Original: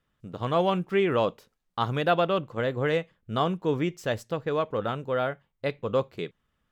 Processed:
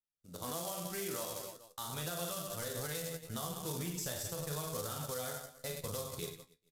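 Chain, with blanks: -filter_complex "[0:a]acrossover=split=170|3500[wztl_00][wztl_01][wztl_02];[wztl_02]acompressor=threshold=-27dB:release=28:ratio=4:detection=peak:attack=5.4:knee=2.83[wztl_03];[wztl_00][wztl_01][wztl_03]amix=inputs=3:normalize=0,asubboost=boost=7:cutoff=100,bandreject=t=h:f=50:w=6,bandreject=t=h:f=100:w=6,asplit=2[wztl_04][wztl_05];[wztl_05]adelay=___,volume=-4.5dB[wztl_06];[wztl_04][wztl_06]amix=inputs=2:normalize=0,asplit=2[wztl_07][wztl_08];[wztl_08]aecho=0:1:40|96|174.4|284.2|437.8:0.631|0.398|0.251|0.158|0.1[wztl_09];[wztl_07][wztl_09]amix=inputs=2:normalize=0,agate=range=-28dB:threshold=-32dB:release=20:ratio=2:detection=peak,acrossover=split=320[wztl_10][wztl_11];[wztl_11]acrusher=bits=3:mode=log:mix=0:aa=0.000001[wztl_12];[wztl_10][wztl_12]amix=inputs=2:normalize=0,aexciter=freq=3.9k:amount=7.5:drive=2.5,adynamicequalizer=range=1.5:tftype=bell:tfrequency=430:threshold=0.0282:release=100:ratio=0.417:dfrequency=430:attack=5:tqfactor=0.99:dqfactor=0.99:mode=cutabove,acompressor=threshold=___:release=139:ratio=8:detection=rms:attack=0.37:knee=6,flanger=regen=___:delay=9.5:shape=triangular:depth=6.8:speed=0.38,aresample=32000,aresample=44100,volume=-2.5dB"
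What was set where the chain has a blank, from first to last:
12, -23dB, 63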